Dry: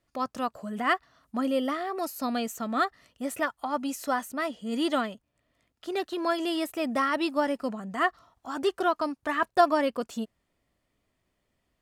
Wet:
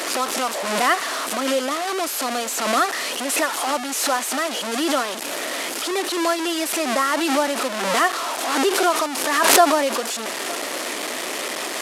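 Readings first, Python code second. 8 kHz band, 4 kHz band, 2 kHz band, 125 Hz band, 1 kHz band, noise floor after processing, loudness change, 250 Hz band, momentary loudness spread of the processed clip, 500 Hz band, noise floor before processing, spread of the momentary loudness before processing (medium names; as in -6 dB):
+22.0 dB, +14.5 dB, +10.0 dB, no reading, +7.5 dB, -29 dBFS, +8.0 dB, +4.0 dB, 8 LU, +7.0 dB, -78 dBFS, 8 LU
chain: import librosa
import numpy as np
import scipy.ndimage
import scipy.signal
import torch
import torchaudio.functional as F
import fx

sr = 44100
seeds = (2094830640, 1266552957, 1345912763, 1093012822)

y = fx.delta_mod(x, sr, bps=64000, step_db=-25.0)
y = scipy.signal.sosfilt(scipy.signal.butter(4, 310.0, 'highpass', fs=sr, output='sos'), y)
y = y + 10.0 ** (-21.5 / 20.0) * np.pad(y, (int(900 * sr / 1000.0), 0))[:len(y)]
y = fx.pre_swell(y, sr, db_per_s=38.0)
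y = y * librosa.db_to_amplitude(5.5)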